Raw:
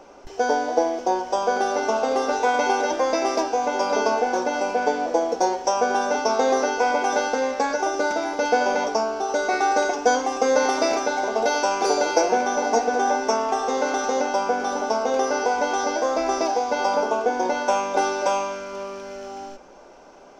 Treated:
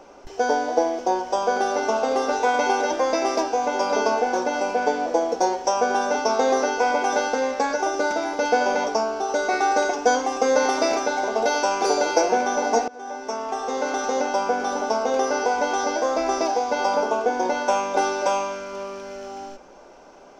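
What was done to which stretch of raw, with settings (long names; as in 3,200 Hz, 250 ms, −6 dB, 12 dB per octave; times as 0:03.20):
0:12.88–0:14.59: fade in equal-power, from −24 dB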